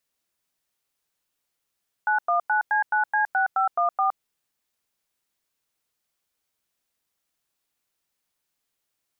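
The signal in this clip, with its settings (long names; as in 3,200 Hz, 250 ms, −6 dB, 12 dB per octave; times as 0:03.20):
touch tones "919C9C6514", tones 116 ms, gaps 97 ms, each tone −21.5 dBFS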